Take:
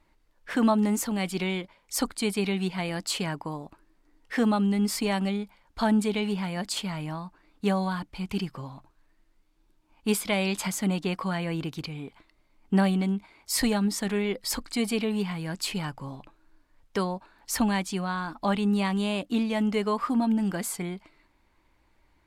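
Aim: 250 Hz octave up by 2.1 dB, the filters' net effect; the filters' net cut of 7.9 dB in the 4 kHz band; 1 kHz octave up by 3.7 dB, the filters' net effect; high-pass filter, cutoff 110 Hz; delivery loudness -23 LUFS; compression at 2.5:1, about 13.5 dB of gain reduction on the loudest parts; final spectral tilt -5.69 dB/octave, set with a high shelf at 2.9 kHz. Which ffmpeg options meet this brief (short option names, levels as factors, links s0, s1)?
-af "highpass=110,equalizer=f=250:t=o:g=3,equalizer=f=1000:t=o:g=5.5,highshelf=f=2900:g=-8,equalizer=f=4000:t=o:g=-4.5,acompressor=threshold=0.0126:ratio=2.5,volume=5.31"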